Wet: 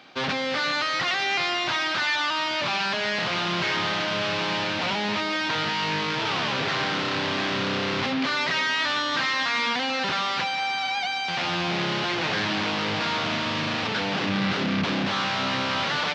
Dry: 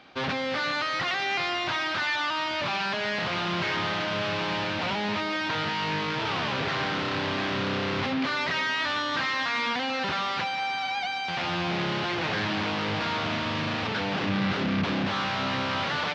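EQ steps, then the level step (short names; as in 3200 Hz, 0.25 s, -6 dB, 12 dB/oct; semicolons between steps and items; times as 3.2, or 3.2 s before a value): HPF 110 Hz; high shelf 4000 Hz +7 dB; +1.5 dB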